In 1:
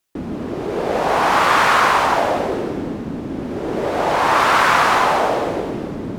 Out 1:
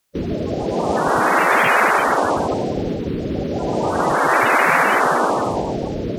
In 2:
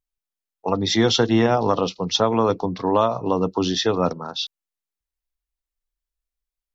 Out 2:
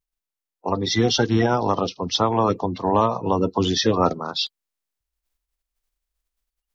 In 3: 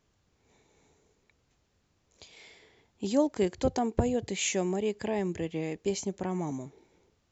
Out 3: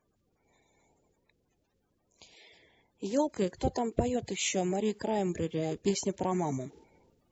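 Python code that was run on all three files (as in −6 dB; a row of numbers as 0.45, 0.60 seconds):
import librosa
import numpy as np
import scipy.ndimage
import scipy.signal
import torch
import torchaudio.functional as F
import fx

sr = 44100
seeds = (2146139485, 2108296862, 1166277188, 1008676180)

y = fx.spec_quant(x, sr, step_db=30)
y = fx.rider(y, sr, range_db=5, speed_s=2.0)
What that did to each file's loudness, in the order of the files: −0.5, −0.5, −1.0 LU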